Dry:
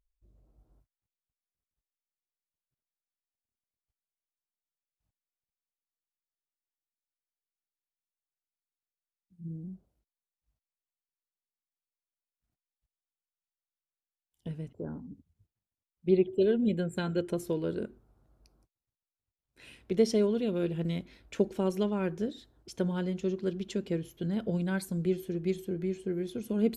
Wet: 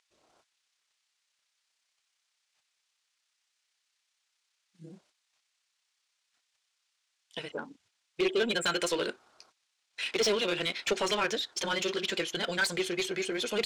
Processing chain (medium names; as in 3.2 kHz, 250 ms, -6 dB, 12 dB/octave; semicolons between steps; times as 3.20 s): frequency weighting ITU-R 468; granular stretch 0.51×, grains 61 ms; treble shelf 9.7 kHz -9.5 dB; overdrive pedal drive 21 dB, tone 3.3 kHz, clips at -18 dBFS; in parallel at -7 dB: saturation -35.5 dBFS, distortion -7 dB